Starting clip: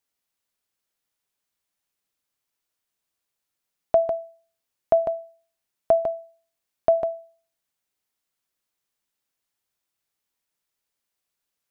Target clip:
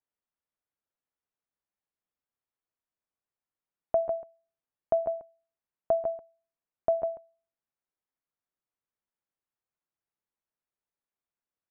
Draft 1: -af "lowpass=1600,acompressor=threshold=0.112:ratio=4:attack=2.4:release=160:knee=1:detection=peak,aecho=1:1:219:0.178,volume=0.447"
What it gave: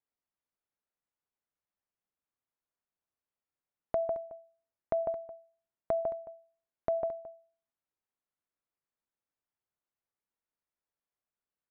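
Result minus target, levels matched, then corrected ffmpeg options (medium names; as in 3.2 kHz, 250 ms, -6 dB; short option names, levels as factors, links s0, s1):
echo 81 ms late; compression: peak gain reduction +6.5 dB
-af "lowpass=1600,aecho=1:1:138:0.178,volume=0.447"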